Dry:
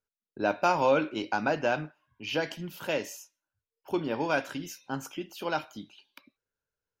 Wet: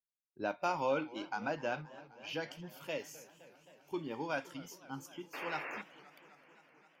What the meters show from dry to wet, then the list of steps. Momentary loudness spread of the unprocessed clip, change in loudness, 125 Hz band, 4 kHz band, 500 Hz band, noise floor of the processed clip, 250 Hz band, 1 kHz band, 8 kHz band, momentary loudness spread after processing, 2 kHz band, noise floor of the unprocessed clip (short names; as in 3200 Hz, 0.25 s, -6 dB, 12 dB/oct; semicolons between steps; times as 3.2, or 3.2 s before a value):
16 LU, -9.5 dB, -9.0 dB, -9.0 dB, -9.5 dB, under -85 dBFS, -9.5 dB, -9.0 dB, -9.0 dB, 18 LU, -8.5 dB, under -85 dBFS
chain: spectral noise reduction 12 dB; painted sound noise, 5.33–5.82, 250–2800 Hz -34 dBFS; warbling echo 0.26 s, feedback 78%, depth 158 cents, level -20 dB; gain -9 dB